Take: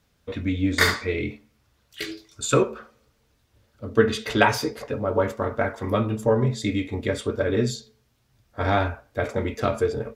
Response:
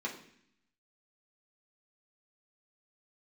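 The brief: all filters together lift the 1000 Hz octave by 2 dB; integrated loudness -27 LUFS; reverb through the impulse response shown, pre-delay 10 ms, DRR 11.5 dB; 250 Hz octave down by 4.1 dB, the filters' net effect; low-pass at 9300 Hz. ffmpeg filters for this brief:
-filter_complex "[0:a]lowpass=9.3k,equalizer=f=250:t=o:g=-5.5,equalizer=f=1k:t=o:g=3,asplit=2[a][b];[1:a]atrim=start_sample=2205,adelay=10[c];[b][c]afir=irnorm=-1:irlink=0,volume=-14.5dB[d];[a][d]amix=inputs=2:normalize=0,volume=-2dB"

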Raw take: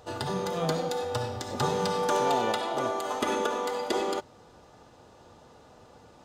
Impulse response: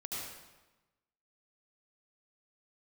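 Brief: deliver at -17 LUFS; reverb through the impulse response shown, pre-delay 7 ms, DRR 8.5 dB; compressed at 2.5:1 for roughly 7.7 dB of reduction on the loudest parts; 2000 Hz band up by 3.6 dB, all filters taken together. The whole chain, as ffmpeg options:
-filter_complex "[0:a]equalizer=f=2k:t=o:g=5,acompressor=threshold=-33dB:ratio=2.5,asplit=2[a][b];[1:a]atrim=start_sample=2205,adelay=7[c];[b][c]afir=irnorm=-1:irlink=0,volume=-9.5dB[d];[a][d]amix=inputs=2:normalize=0,volume=17dB"

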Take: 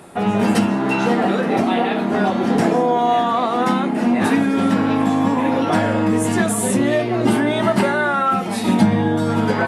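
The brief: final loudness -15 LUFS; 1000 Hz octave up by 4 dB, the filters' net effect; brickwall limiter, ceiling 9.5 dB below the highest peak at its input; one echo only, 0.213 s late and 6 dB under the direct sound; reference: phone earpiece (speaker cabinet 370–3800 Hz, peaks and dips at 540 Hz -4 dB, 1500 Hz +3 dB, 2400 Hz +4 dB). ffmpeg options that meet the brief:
-af "equalizer=f=1k:t=o:g=5.5,alimiter=limit=-11.5dB:level=0:latency=1,highpass=370,equalizer=f=540:t=q:w=4:g=-4,equalizer=f=1.5k:t=q:w=4:g=3,equalizer=f=2.4k:t=q:w=4:g=4,lowpass=f=3.8k:w=0.5412,lowpass=f=3.8k:w=1.3066,aecho=1:1:213:0.501,volume=6dB"

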